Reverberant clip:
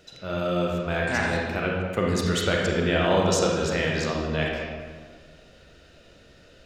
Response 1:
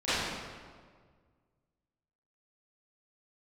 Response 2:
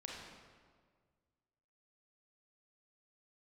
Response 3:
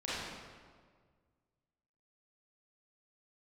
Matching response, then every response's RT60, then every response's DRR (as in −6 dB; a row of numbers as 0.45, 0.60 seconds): 2; 1.7, 1.7, 1.7 seconds; −18.0, −2.5, −10.0 decibels